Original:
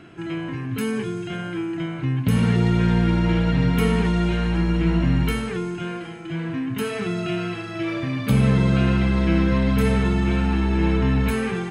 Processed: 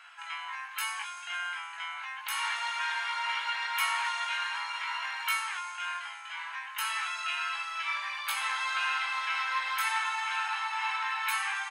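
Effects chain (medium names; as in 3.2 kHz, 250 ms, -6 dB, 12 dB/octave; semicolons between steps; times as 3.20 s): Chebyshev high-pass 860 Hz, order 5; doubling 19 ms -4 dB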